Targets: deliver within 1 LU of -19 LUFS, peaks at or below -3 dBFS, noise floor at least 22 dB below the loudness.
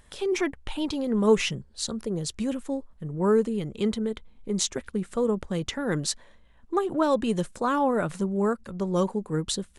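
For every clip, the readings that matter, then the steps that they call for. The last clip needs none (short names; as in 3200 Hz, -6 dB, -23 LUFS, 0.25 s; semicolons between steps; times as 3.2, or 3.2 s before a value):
loudness -27.5 LUFS; peak -9.5 dBFS; loudness target -19.0 LUFS
-> gain +8.5 dB; limiter -3 dBFS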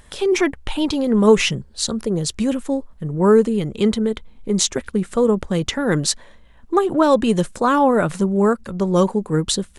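loudness -19.0 LUFS; peak -3.0 dBFS; noise floor -47 dBFS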